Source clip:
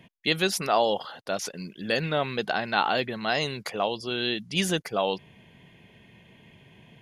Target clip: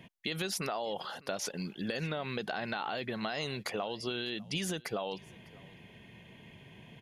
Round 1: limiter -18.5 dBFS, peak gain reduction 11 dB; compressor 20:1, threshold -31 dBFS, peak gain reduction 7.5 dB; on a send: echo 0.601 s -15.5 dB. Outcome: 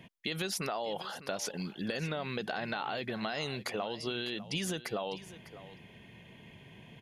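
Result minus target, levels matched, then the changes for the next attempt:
echo-to-direct +8 dB
change: echo 0.601 s -23.5 dB

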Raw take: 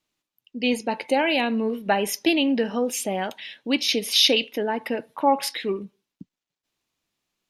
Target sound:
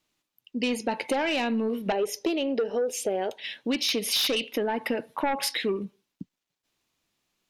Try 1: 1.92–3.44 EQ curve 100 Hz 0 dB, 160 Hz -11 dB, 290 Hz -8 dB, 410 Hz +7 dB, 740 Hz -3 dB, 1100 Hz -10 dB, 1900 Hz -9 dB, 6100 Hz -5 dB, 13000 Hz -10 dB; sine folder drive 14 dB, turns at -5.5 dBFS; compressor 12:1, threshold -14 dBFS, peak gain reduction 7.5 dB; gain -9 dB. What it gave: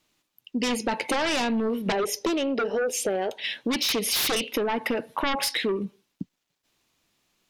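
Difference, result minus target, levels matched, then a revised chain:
sine folder: distortion +10 dB
1.92–3.44 EQ curve 100 Hz 0 dB, 160 Hz -11 dB, 290 Hz -8 dB, 410 Hz +7 dB, 740 Hz -3 dB, 1100 Hz -10 dB, 1900 Hz -9 dB, 6100 Hz -5 dB, 13000 Hz -10 dB; sine folder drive 8 dB, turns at -5.5 dBFS; compressor 12:1, threshold -14 dBFS, peak gain reduction 7.5 dB; gain -9 dB

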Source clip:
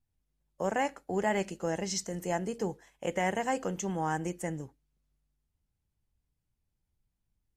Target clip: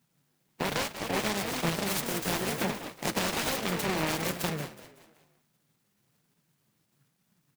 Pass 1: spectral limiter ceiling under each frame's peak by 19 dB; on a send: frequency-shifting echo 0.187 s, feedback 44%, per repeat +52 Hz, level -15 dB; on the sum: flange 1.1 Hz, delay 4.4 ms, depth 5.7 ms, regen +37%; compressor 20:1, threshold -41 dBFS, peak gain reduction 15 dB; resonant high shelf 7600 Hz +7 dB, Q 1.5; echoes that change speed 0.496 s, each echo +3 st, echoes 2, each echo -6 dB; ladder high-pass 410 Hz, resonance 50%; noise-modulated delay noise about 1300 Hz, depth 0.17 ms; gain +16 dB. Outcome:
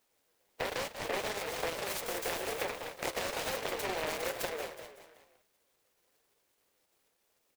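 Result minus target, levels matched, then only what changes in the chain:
125 Hz band -10.0 dB; compressor: peak gain reduction +7.5 dB
change: compressor 20:1, threshold -33 dBFS, peak gain reduction 7.5 dB; change: ladder high-pass 120 Hz, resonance 50%

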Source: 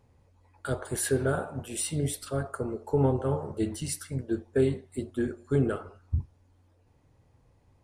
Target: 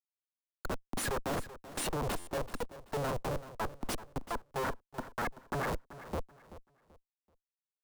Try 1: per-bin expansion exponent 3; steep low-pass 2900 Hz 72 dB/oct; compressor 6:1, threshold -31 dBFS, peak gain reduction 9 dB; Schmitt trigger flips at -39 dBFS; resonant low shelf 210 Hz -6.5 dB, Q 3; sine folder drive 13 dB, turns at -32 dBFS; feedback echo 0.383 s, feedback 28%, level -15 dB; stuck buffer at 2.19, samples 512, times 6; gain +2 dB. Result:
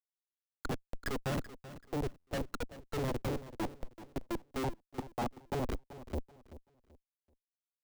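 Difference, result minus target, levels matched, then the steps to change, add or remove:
compressor: peak gain reduction +9 dB; 4000 Hz band -2.5 dB
remove: steep low-pass 2900 Hz 72 dB/oct; remove: compressor 6:1, threshold -31 dBFS, peak gain reduction 9 dB

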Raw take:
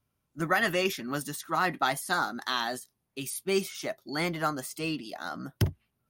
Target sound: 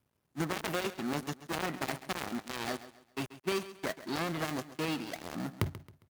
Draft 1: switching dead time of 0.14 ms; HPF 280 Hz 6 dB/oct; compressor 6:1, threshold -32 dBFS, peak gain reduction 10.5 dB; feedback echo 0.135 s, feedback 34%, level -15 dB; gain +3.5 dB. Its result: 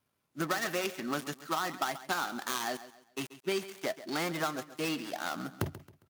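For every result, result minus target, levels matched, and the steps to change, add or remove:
switching dead time: distortion -8 dB; 125 Hz band -5.0 dB
change: switching dead time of 0.42 ms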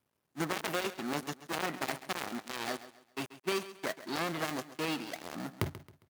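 125 Hz band -3.5 dB
change: HPF 72 Hz 6 dB/oct

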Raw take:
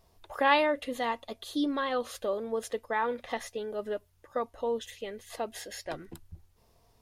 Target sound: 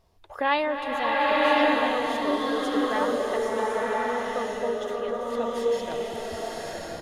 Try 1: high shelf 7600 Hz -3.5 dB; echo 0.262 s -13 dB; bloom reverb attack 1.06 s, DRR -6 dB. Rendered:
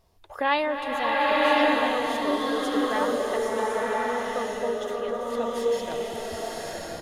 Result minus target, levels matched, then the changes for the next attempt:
8000 Hz band +3.0 dB
change: high shelf 7600 Hz -9.5 dB

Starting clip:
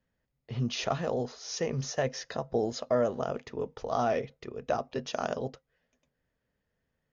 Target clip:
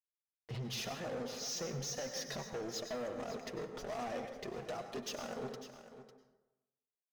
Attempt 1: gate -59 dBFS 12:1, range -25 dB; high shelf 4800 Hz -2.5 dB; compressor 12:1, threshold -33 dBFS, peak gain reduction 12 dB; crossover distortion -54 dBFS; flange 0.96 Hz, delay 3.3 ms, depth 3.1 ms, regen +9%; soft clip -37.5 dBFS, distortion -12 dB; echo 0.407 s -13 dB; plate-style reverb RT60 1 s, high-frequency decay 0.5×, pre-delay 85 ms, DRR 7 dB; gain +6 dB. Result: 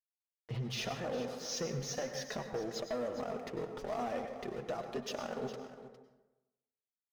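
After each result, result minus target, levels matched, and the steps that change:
echo 0.143 s early; 8000 Hz band -3.5 dB; soft clip: distortion -5 dB
change: echo 0.55 s -13 dB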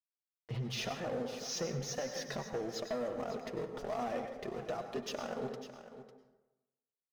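8000 Hz band -3.5 dB; soft clip: distortion -5 dB
change: high shelf 4800 Hz +8.5 dB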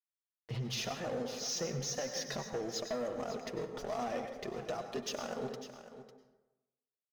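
soft clip: distortion -5 dB
change: soft clip -43.5 dBFS, distortion -8 dB

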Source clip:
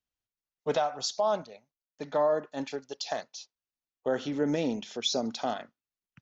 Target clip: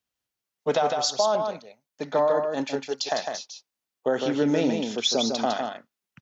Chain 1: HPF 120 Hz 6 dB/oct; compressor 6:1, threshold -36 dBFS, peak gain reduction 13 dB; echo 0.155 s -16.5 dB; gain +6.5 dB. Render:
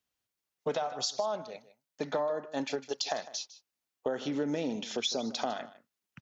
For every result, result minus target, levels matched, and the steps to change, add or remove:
compressor: peak gain reduction +9.5 dB; echo-to-direct -11.5 dB
change: compressor 6:1, threshold -24.5 dBFS, peak gain reduction 3.5 dB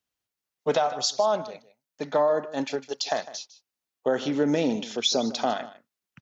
echo-to-direct -11.5 dB
change: echo 0.155 s -5 dB

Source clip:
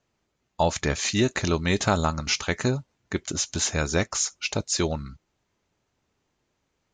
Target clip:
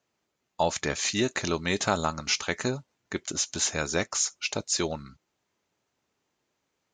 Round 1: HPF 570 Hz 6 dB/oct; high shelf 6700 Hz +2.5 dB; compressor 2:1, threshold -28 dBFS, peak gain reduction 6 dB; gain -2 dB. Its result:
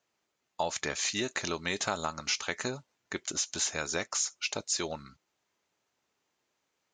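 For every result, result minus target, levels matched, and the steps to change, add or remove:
compressor: peak gain reduction +6 dB; 250 Hz band -3.5 dB
remove: compressor 2:1, threshold -28 dBFS, peak gain reduction 6 dB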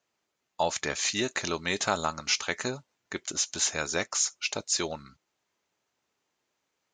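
250 Hz band -4.0 dB
change: HPF 230 Hz 6 dB/oct

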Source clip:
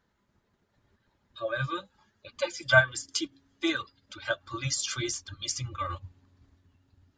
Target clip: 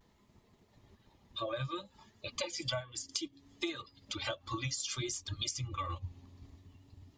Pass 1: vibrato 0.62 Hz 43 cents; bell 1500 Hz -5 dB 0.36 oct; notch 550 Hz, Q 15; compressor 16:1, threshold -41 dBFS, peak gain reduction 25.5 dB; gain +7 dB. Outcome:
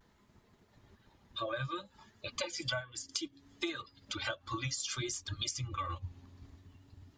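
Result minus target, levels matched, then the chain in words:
2000 Hz band +3.0 dB
vibrato 0.62 Hz 43 cents; bell 1500 Hz -14 dB 0.36 oct; notch 550 Hz, Q 15; compressor 16:1, threshold -41 dBFS, peak gain reduction 23.5 dB; gain +7 dB

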